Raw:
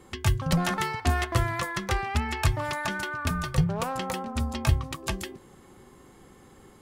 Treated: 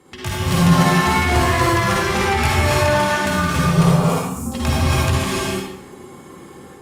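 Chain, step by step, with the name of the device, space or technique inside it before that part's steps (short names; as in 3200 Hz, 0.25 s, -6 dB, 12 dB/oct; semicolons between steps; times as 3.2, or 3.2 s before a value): 3.88–4.46 elliptic band-stop 240–7100 Hz; non-linear reverb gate 0.32 s rising, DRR -3.5 dB; far-field microphone of a smart speaker (reverb RT60 0.75 s, pre-delay 47 ms, DRR -3.5 dB; HPF 99 Hz 12 dB/oct; AGC gain up to 3 dB; Opus 48 kbps 48000 Hz)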